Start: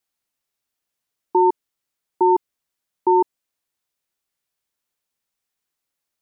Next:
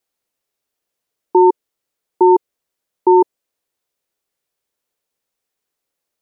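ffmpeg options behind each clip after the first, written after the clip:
-af "equalizer=f=470:t=o:w=1.1:g=8,volume=1.5dB"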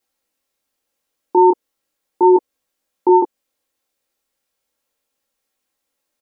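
-af "aecho=1:1:3.7:0.48,alimiter=limit=-7dB:level=0:latency=1:release=158,flanger=delay=18:depth=7.4:speed=0.37,volume=5.5dB"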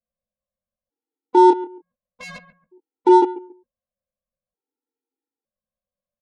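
-filter_complex "[0:a]asplit=2[a][b];[b]adelay=138,lowpass=f=810:p=1,volume=-15dB,asplit=2[c][d];[d]adelay=138,lowpass=f=810:p=1,volume=0.31,asplit=2[e][f];[f]adelay=138,lowpass=f=810:p=1,volume=0.31[g];[a][c][e][g]amix=inputs=4:normalize=0,adynamicsmooth=sensitivity=1.5:basefreq=610,afftfilt=real='re*gt(sin(2*PI*0.55*pts/sr)*(1-2*mod(floor(b*sr/1024/250),2)),0)':imag='im*gt(sin(2*PI*0.55*pts/sr)*(1-2*mod(floor(b*sr/1024/250),2)),0)':win_size=1024:overlap=0.75"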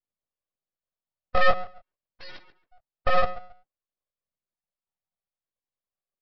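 -af "flanger=delay=0.5:depth=7.6:regen=-37:speed=0.44:shape=sinusoidal,aresample=11025,aeval=exprs='abs(val(0))':c=same,aresample=44100"

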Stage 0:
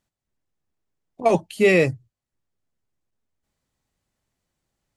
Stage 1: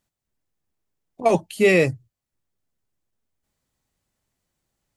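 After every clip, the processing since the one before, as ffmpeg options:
-af "highshelf=f=8.4k:g=5.5"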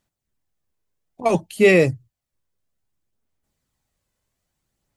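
-af "aphaser=in_gain=1:out_gain=1:delay=2:decay=0.28:speed=0.6:type=sinusoidal"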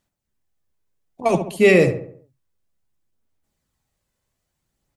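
-filter_complex "[0:a]asplit=2[a][b];[b]adelay=69,lowpass=f=1.9k:p=1,volume=-8dB,asplit=2[c][d];[d]adelay=69,lowpass=f=1.9k:p=1,volume=0.48,asplit=2[e][f];[f]adelay=69,lowpass=f=1.9k:p=1,volume=0.48,asplit=2[g][h];[h]adelay=69,lowpass=f=1.9k:p=1,volume=0.48,asplit=2[i][j];[j]adelay=69,lowpass=f=1.9k:p=1,volume=0.48,asplit=2[k][l];[l]adelay=69,lowpass=f=1.9k:p=1,volume=0.48[m];[a][c][e][g][i][k][m]amix=inputs=7:normalize=0"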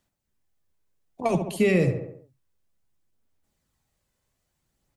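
-filter_complex "[0:a]acrossover=split=200[a][b];[b]acompressor=threshold=-24dB:ratio=3[c];[a][c]amix=inputs=2:normalize=0"

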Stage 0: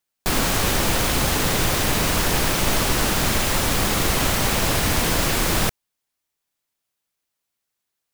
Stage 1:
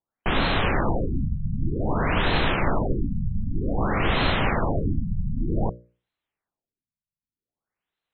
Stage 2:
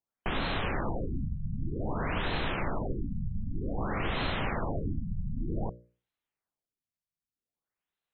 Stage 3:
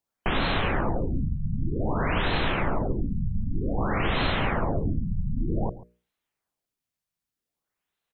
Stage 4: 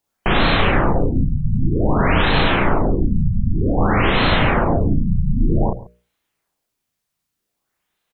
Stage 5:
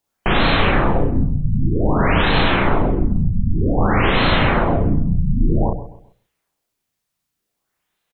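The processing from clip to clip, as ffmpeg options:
-af "bandreject=f=60:t=h:w=6,bandreject=f=120:t=h:w=6,bandreject=f=180:t=h:w=6,bandreject=f=240:t=h:w=6,bandreject=f=300:t=h:w=6,bandreject=f=360:t=h:w=6,bandreject=f=420:t=h:w=6,bandreject=f=480:t=h:w=6,bandreject=f=540:t=h:w=6,bandreject=f=600:t=h:w=6,afftfilt=real='re*lt(b*sr/1024,210*pow(4300/210,0.5+0.5*sin(2*PI*0.53*pts/sr)))':imag='im*lt(b*sr/1024,210*pow(4300/210,0.5+0.5*sin(2*PI*0.53*pts/sr)))':win_size=1024:overlap=0.75"
-af "acompressor=threshold=-24dB:ratio=2,volume=-5.5dB"
-af "aecho=1:1:138:0.106,volume=6dB"
-filter_complex "[0:a]asplit=2[a][b];[b]adelay=35,volume=-2dB[c];[a][c]amix=inputs=2:normalize=0,volume=7.5dB"
-af "aecho=1:1:131|262|393:0.2|0.0658|0.0217"

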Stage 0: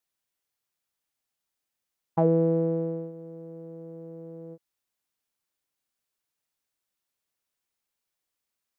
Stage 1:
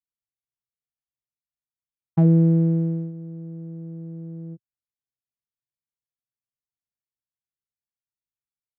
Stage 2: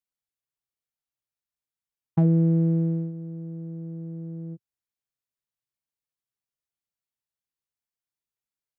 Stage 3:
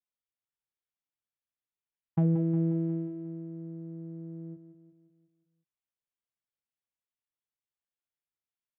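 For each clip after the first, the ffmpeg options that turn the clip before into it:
-af "highpass=50,anlmdn=0.01,equalizer=f=125:t=o:w=1:g=8,equalizer=f=250:t=o:w=1:g=6,equalizer=f=500:t=o:w=1:g=-12,equalizer=f=1k:t=o:w=1:g=-12,volume=5dB"
-af "acompressor=threshold=-19dB:ratio=2"
-filter_complex "[0:a]asplit=2[a][b];[b]aecho=0:1:179|358|537|716|895|1074:0.299|0.161|0.0871|0.047|0.0254|0.0137[c];[a][c]amix=inputs=2:normalize=0,aresample=8000,aresample=44100,volume=-5.5dB"

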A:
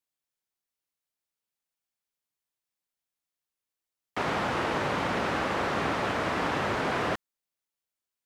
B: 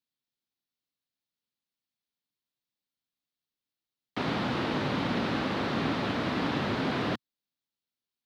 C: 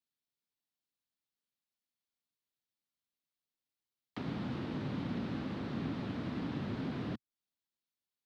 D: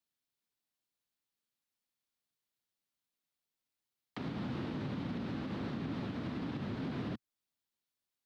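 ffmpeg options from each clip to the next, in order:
-af "equalizer=f=125:t=o:w=1:g=7,equalizer=f=250:t=o:w=1:g=10,equalizer=f=4k:t=o:w=1:g=10,equalizer=f=8k:t=o:w=1:g=-7,volume=-5.5dB"
-filter_complex "[0:a]acrossover=split=310[a][b];[b]acompressor=threshold=-43dB:ratio=4[c];[a][c]amix=inputs=2:normalize=0,volume=-4.5dB"
-af "alimiter=level_in=8dB:limit=-24dB:level=0:latency=1:release=99,volume=-8dB,volume=2dB"

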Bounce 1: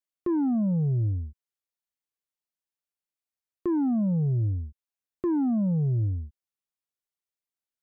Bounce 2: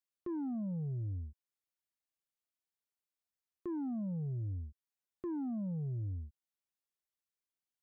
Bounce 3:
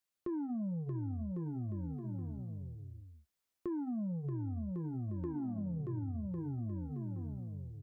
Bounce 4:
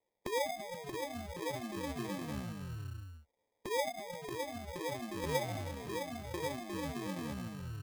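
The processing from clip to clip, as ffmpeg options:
-af "alimiter=level_in=7dB:limit=-24dB:level=0:latency=1:release=448,volume=-7dB,volume=-4dB"
-filter_complex "[0:a]asplit=2[a][b];[b]aecho=0:1:630|1102|1457|1723|1922:0.631|0.398|0.251|0.158|0.1[c];[a][c]amix=inputs=2:normalize=0,flanger=delay=9.2:depth=1.9:regen=-59:speed=0.28:shape=sinusoidal,acompressor=threshold=-44dB:ratio=6,volume=8.5dB"
-af "afftfilt=real='re*lt(hypot(re,im),0.0708)':imag='im*lt(hypot(re,im),0.0708)':win_size=1024:overlap=0.75,lowpass=f=910:t=q:w=11,acrusher=samples=31:mix=1:aa=0.000001,volume=5dB"

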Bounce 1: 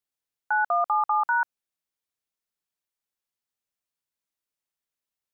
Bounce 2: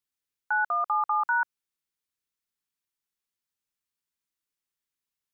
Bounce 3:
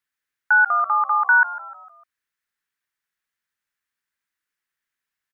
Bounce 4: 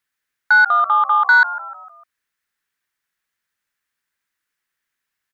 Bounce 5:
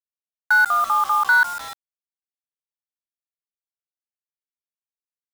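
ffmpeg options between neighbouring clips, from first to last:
-af "equalizer=f=650:w=2.3:g=-10"
-filter_complex "[0:a]equalizer=f=1.7k:w=1.4:g=14.5,asplit=5[a][b][c][d][e];[b]adelay=151,afreqshift=-66,volume=-16.5dB[f];[c]adelay=302,afreqshift=-132,volume=-23.2dB[g];[d]adelay=453,afreqshift=-198,volume=-30dB[h];[e]adelay=604,afreqshift=-264,volume=-36.7dB[i];[a][f][g][h][i]amix=inputs=5:normalize=0"
-af "asoftclip=type=tanh:threshold=-9.5dB,volume=5dB"
-af "acrusher=bits=4:mix=0:aa=0.000001,volume=-4dB"

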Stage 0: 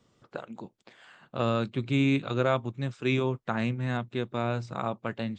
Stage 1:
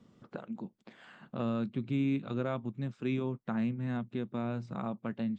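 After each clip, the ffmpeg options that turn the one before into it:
-af "equalizer=f=210:t=o:w=0.94:g=11,acompressor=threshold=-48dB:ratio=1.5,highshelf=f=4.4k:g=-8"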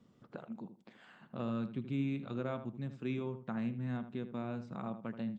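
-filter_complex "[0:a]asplit=2[a][b];[b]adelay=79,lowpass=f=2k:p=1,volume=-10dB,asplit=2[c][d];[d]adelay=79,lowpass=f=2k:p=1,volume=0.21,asplit=2[e][f];[f]adelay=79,lowpass=f=2k:p=1,volume=0.21[g];[a][c][e][g]amix=inputs=4:normalize=0,volume=-4.5dB"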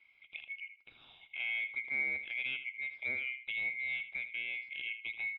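-af "afftfilt=real='real(if(lt(b,920),b+92*(1-2*mod(floor(b/92),2)),b),0)':imag='imag(if(lt(b,920),b+92*(1-2*mod(floor(b/92),2)),b),0)':win_size=2048:overlap=0.75,aresample=11025,aresample=44100"

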